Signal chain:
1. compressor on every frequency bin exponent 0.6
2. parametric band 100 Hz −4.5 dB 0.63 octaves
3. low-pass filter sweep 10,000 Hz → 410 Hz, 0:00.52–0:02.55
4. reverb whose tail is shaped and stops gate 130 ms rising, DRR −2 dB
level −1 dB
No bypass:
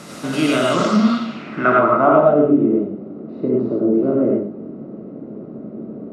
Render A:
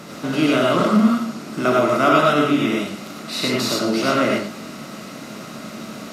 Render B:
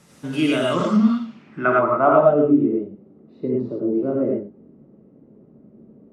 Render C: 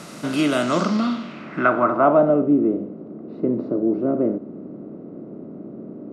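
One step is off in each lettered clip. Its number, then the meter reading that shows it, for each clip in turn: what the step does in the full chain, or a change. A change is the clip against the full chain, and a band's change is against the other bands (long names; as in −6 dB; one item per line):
3, change in momentary loudness spread −2 LU
1, change in crest factor +2.0 dB
4, change in integrated loudness −3.5 LU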